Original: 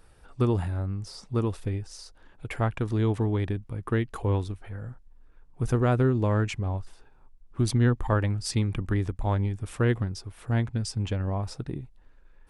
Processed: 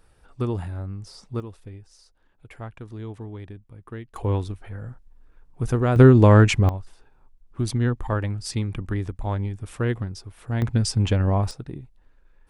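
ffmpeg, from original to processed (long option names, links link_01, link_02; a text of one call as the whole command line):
ffmpeg -i in.wav -af "asetnsamples=nb_out_samples=441:pad=0,asendcmd='1.4 volume volume -10.5dB;4.16 volume volume 2dB;5.96 volume volume 11.5dB;6.69 volume volume -0.5dB;10.62 volume volume 8dB;11.51 volume volume -1.5dB',volume=-2dB" out.wav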